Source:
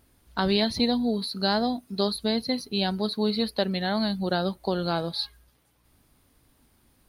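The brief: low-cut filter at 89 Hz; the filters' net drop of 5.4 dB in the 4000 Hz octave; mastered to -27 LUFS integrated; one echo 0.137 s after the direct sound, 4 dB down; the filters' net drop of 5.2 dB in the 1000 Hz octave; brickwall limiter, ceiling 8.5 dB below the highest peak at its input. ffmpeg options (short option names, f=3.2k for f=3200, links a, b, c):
-af "highpass=89,equalizer=f=1k:t=o:g=-7.5,equalizer=f=4k:t=o:g=-5.5,alimiter=limit=-21.5dB:level=0:latency=1,aecho=1:1:137:0.631,volume=3dB"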